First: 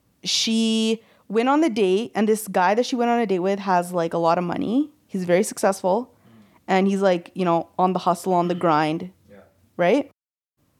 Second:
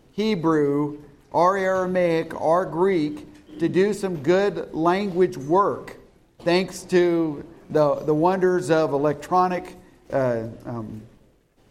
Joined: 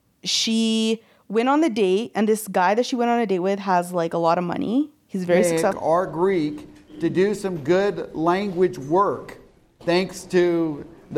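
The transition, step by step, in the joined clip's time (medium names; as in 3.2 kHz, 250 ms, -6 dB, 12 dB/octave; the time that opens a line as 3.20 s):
first
5.52 s: go over to second from 2.11 s, crossfade 0.42 s logarithmic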